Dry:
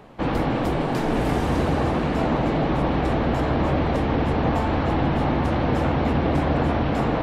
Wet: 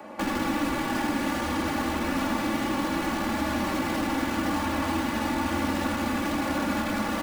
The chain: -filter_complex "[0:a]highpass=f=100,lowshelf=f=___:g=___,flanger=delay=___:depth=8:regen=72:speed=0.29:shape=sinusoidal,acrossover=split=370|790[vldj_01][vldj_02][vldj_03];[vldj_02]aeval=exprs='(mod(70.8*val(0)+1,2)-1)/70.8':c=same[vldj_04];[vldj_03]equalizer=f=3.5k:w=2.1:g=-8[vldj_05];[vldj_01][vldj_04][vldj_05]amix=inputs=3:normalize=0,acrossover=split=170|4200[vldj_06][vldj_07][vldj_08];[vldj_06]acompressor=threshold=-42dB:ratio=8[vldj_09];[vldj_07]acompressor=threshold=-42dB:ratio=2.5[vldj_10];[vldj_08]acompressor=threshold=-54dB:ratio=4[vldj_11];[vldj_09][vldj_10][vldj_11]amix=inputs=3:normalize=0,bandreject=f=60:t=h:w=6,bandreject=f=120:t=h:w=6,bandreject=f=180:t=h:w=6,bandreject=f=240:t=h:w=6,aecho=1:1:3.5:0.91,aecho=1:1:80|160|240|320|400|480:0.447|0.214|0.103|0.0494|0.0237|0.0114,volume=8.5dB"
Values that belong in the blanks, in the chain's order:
170, -10.5, 4.7